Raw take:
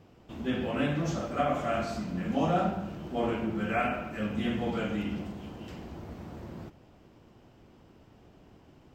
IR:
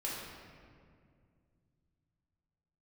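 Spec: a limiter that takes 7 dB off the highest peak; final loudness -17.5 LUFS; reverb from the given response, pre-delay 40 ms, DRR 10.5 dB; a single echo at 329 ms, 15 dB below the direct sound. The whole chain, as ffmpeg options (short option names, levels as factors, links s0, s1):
-filter_complex "[0:a]alimiter=limit=0.0708:level=0:latency=1,aecho=1:1:329:0.178,asplit=2[s0][s1];[1:a]atrim=start_sample=2205,adelay=40[s2];[s1][s2]afir=irnorm=-1:irlink=0,volume=0.211[s3];[s0][s3]amix=inputs=2:normalize=0,volume=5.96"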